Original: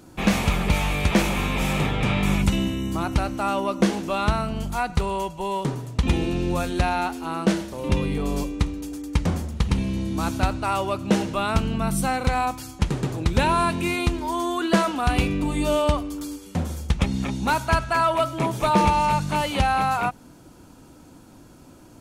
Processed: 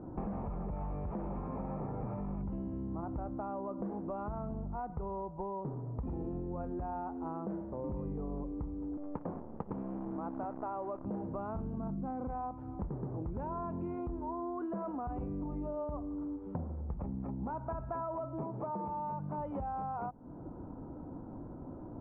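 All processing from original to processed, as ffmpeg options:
ffmpeg -i in.wav -filter_complex "[0:a]asettb=1/sr,asplit=3[link_01][link_02][link_03];[link_01]atrim=end=1.414[link_04];[link_02]atrim=start=1.41:end=2.2,asetpts=PTS-STARTPTS,afade=type=in:duration=0.004:curve=qsin,afade=type=out:start_time=0.786:duration=0.004:curve=qsin,equalizer=frequency=3100:width=6.6:gain=-11,bandreject=frequency=50:width_type=h:width=6,bandreject=frequency=100:width_type=h:width=6,bandreject=frequency=150:width_type=h:width=6,bandreject=frequency=200:width_type=h:width=6,bandreject=frequency=250:width_type=h:width=6,bandreject=frequency=300:width_type=h:width=6,bandreject=frequency=350:width_type=h:width=6,bandreject=frequency=400:width_type=h:width=6,bandreject=frequency=450:width_type=h:width=6[link_05];[link_03]atrim=start=2.196[link_06];[link_04][link_05]acrossfade=duration=0.004:curve1=hsin:curve2=qsin[link_07];[link_07][link_06]acrossfade=duration=0.004:curve1=qsin:curve2=hsin,asettb=1/sr,asplit=3[link_08][link_09][link_10];[link_08]atrim=end=8.974[link_11];[link_09]atrim=start=8.97:end=11.05,asetpts=PTS-STARTPTS,afade=type=in:duration=0.004:curve=qsin,afade=type=out:start_time=2.076:duration=0.004:curve=qsin,highpass=250,acrusher=bits=6:dc=4:mix=0:aa=0.000001[link_12];[link_10]atrim=start=11.046[link_13];[link_11][link_12]acrossfade=duration=0.004:curve1=hsin:curve2=qsin[link_14];[link_14][link_13]acrossfade=duration=0.004:curve1=qsin:curve2=hsin,asettb=1/sr,asplit=3[link_15][link_16][link_17];[link_15]atrim=end=11.784[link_18];[link_16]atrim=start=11.78:end=12.31,asetpts=PTS-STARTPTS,afade=type=in:duration=0.004:curve=qsin,afade=type=out:start_time=0.526:duration=0.004:curve=qsin,asuperstop=centerf=3900:order=4:qfactor=5.4,equalizer=frequency=260:width_type=o:width=0.87:gain=7.5[link_19];[link_17]atrim=start=12.306[link_20];[link_18][link_19]acrossfade=duration=0.004:curve1=hsin:curve2=qsin[link_21];[link_21][link_20]acrossfade=duration=0.004:curve1=qsin:curve2=hsin,asettb=1/sr,asplit=3[link_22][link_23][link_24];[link_22]atrim=end=18.434[link_25];[link_23]atrim=start=18.43:end=19.38,asetpts=PTS-STARTPTS,afade=type=in:duration=0.004:curve=qsin,afade=type=out:start_time=0.946:duration=0.004:curve=qsin,acompressor=threshold=-26dB:ratio=2:attack=3.2:release=140:knee=1:detection=peak,highpass=120,lowpass=6700[link_26];[link_24]atrim=start=19.376[link_27];[link_25][link_26]acrossfade=duration=0.004:curve1=hsin:curve2=qsin[link_28];[link_28][link_27]acrossfade=duration=0.004:curve1=qsin:curve2=hsin,lowpass=frequency=1000:width=0.5412,lowpass=frequency=1000:width=1.3066,alimiter=limit=-19dB:level=0:latency=1:release=16,acompressor=threshold=-40dB:ratio=6,volume=3dB" out.wav

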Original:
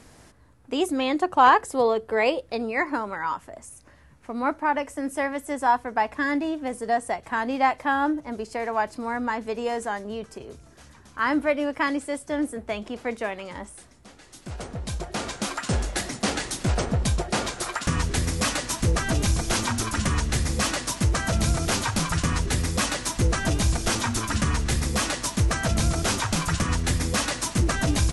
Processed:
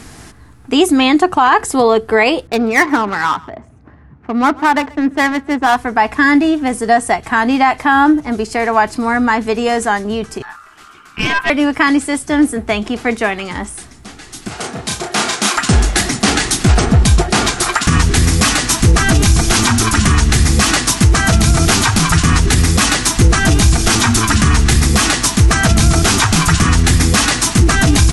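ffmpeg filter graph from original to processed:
ffmpeg -i in.wav -filter_complex "[0:a]asettb=1/sr,asplit=3[link_01][link_02][link_03];[link_01]atrim=end=2.474[link_04];[link_02]atrim=start=2.47:end=5.76,asetpts=PTS-STARTPTS,afade=type=in:duration=0.004:curve=qsin,afade=type=out:start_time=3.286:duration=0.004:curve=qsin,highpass=73,adynamicsmooth=sensitivity=5:basefreq=1000,aecho=1:1:133:0.0668,atrim=end_sample=145089[link_05];[link_03]atrim=start=5.756[link_06];[link_04][link_05]acrossfade=duration=0.004:curve1=hsin:curve2=qsin[link_07];[link_07][link_06]acrossfade=duration=0.004:curve1=qsin:curve2=hsin,asettb=1/sr,asplit=3[link_08][link_09][link_10];[link_08]atrim=end=10.424[link_11];[link_09]atrim=start=10.42:end=11.5,asetpts=PTS-STARTPTS,afade=type=in:duration=0.004:curve=qsin,afade=type=out:start_time=1.076:duration=0.004:curve=qsin,highshelf=frequency=3900:gain=-4.5,aeval=exprs='val(0)*sin(2*PI*1300*n/s)':channel_layout=same,aeval=exprs='(tanh(14.1*val(0)+0.6)-tanh(0.6))/14.1':channel_layout=same[link_12];[link_10]atrim=start=11.496[link_13];[link_11][link_12]acrossfade=duration=0.004:curve1=hsin:curve2=qsin[link_14];[link_14][link_13]acrossfade=duration=0.004:curve1=qsin:curve2=hsin,asettb=1/sr,asplit=3[link_15][link_16][link_17];[link_15]atrim=end=14.484[link_18];[link_16]atrim=start=14.48:end=15.57,asetpts=PTS-STARTPTS,afade=type=in:duration=0.004:curve=qsin,afade=type=out:start_time=1.086:duration=0.004:curve=qsin,highpass=130,lowshelf=frequency=230:gain=-11,asplit=2[link_19][link_20];[link_20]adelay=34,volume=-3.5dB[link_21];[link_19][link_21]amix=inputs=2:normalize=0,atrim=end_sample=48069[link_22];[link_17]atrim=start=15.566[link_23];[link_18][link_22]acrossfade=duration=0.004:curve1=hsin:curve2=qsin[link_24];[link_24][link_23]acrossfade=duration=0.004:curve1=qsin:curve2=hsin,equalizer=frequency=550:width=4.8:gain=-13,bandreject=frequency=960:width=15,alimiter=level_in=16.5dB:limit=-1dB:release=50:level=0:latency=1,volume=-1dB" out.wav

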